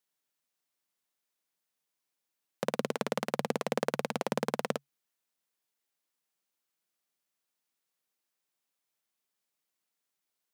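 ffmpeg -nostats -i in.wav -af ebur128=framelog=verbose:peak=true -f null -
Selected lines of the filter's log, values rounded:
Integrated loudness:
  I:         -34.3 LUFS
  Threshold: -44.3 LUFS
Loudness range:
  LRA:         7.6 LU
  Threshold: -57.2 LUFS
  LRA low:   -42.8 LUFS
  LRA high:  -35.1 LUFS
True peak:
  Peak:      -12.3 dBFS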